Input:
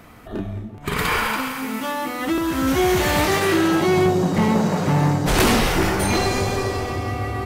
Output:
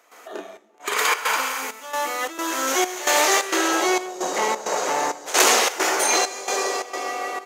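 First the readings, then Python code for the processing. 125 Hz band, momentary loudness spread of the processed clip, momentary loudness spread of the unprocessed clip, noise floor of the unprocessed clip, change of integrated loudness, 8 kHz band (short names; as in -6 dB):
under -30 dB, 11 LU, 9 LU, -37 dBFS, -1.0 dB, +8.0 dB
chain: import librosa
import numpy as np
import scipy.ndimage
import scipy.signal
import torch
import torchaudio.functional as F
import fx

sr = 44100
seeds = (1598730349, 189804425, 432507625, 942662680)

y = scipy.signal.sosfilt(scipy.signal.butter(4, 430.0, 'highpass', fs=sr, output='sos'), x)
y = fx.peak_eq(y, sr, hz=6600.0, db=11.5, octaves=0.41)
y = fx.step_gate(y, sr, bpm=132, pattern='.xxxx..xxx', floor_db=-12.0, edge_ms=4.5)
y = F.gain(torch.from_numpy(y), 2.0).numpy()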